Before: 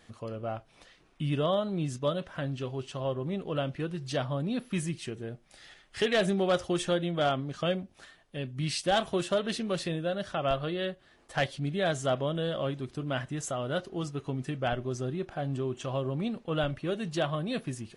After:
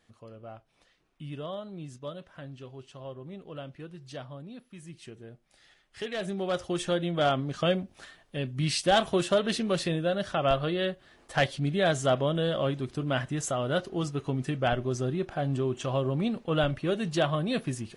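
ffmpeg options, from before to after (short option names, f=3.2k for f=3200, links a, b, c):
-af "volume=10.5dB,afade=t=out:st=4.16:d=0.62:silence=0.446684,afade=t=in:st=4.78:d=0.26:silence=0.375837,afade=t=in:st=6.16:d=1.37:silence=0.266073"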